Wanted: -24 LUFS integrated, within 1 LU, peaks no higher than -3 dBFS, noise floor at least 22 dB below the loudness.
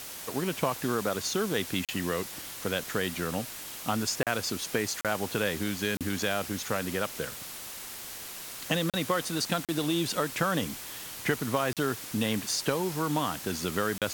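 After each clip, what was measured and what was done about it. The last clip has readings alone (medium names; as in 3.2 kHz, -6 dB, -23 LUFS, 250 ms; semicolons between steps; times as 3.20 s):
dropouts 8; longest dropout 37 ms; noise floor -41 dBFS; noise floor target -53 dBFS; loudness -30.5 LUFS; peak level -12.5 dBFS; loudness target -24.0 LUFS
-> interpolate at 1.85/4.23/5.01/5.97/8.90/9.65/11.73/13.98 s, 37 ms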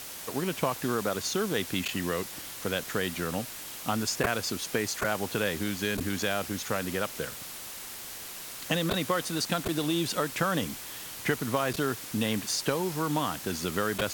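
dropouts 0; noise floor -41 dBFS; noise floor target -53 dBFS
-> noise reduction 12 dB, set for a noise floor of -41 dBFS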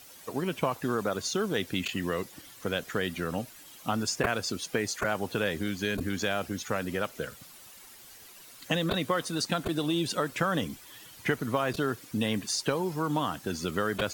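noise floor -51 dBFS; noise floor target -53 dBFS
-> noise reduction 6 dB, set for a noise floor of -51 dBFS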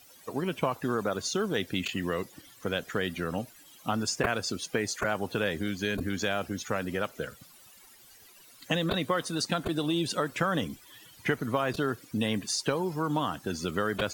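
noise floor -55 dBFS; loudness -31.0 LUFS; peak level -12.5 dBFS; loudness target -24.0 LUFS
-> trim +7 dB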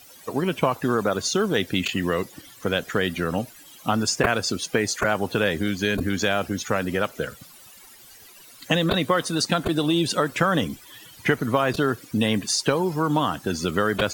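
loudness -24.0 LUFS; peak level -5.5 dBFS; noise floor -48 dBFS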